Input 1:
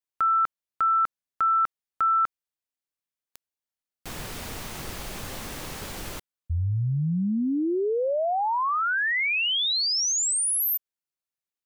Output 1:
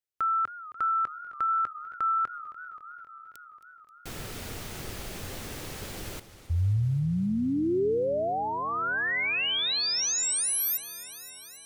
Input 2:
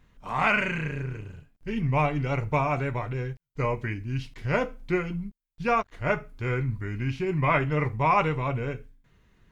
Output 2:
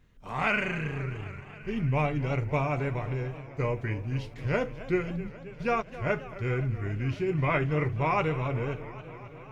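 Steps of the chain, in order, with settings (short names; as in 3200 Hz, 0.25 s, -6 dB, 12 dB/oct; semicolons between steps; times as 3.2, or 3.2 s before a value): fifteen-band EQ 100 Hz +4 dB, 400 Hz +3 dB, 1000 Hz -4 dB; warbling echo 0.266 s, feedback 76%, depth 136 cents, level -16 dB; gain -3 dB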